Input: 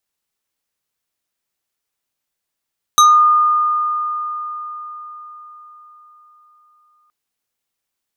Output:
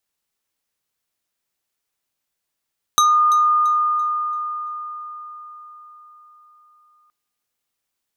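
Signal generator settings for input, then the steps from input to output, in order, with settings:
FM tone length 4.12 s, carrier 1220 Hz, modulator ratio 4.14, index 1.2, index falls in 0.29 s exponential, decay 4.86 s, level -5 dB
compressor 4:1, threshold -14 dBFS; thin delay 0.338 s, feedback 31%, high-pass 3100 Hz, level -15 dB

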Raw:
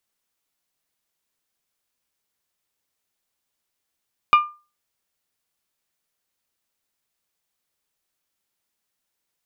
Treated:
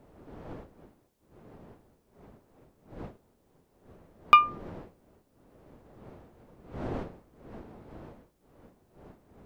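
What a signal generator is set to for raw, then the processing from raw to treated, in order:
glass hit bell, lowest mode 1200 Hz, decay 0.32 s, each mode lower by 8.5 dB, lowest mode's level -7 dB
wind noise 460 Hz -47 dBFS

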